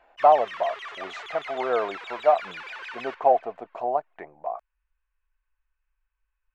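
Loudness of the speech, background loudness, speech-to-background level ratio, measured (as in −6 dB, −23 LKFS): −25.0 LKFS, −37.5 LKFS, 12.5 dB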